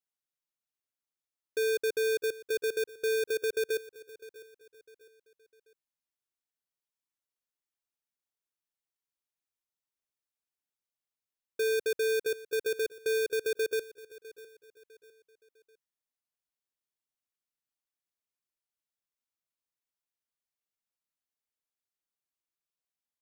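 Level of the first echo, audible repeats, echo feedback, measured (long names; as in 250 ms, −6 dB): −18.0 dB, 2, 37%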